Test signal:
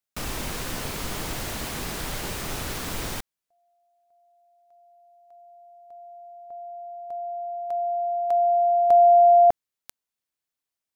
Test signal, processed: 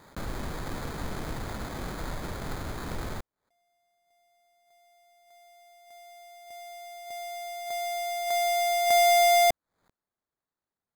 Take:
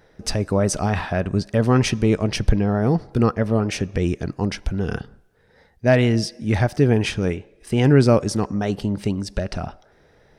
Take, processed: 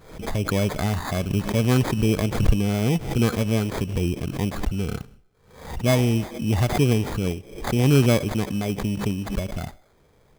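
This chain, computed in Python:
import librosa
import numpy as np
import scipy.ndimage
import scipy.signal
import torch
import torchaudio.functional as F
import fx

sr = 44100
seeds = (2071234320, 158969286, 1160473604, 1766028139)

y = fx.low_shelf(x, sr, hz=310.0, db=5.5)
y = fx.sample_hold(y, sr, seeds[0], rate_hz=2800.0, jitter_pct=0)
y = fx.pre_swell(y, sr, db_per_s=91.0)
y = y * librosa.db_to_amplitude(-6.5)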